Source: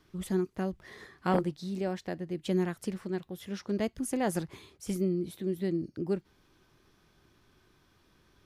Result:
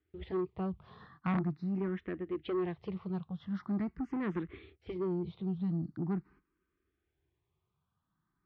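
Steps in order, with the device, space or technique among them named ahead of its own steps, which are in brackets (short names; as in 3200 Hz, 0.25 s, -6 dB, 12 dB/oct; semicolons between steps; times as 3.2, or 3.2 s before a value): gate -56 dBFS, range -17 dB; LPF 6000 Hz; tilt -2 dB/oct; barber-pole phaser into a guitar amplifier (endless phaser +0.43 Hz; soft clip -27.5 dBFS, distortion -12 dB; speaker cabinet 78–3700 Hz, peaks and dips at 110 Hz -7 dB, 240 Hz -5 dB, 570 Hz -8 dB, 1200 Hz +6 dB, 2000 Hz +3 dB); low shelf 150 Hz +4.5 dB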